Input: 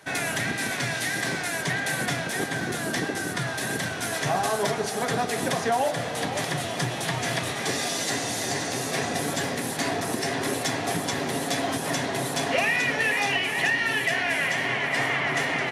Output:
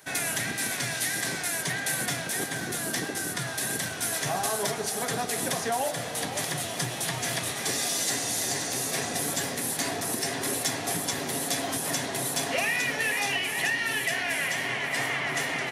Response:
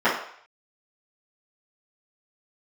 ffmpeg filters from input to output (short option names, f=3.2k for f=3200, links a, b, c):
-af "aemphasis=mode=production:type=50kf,volume=-5dB"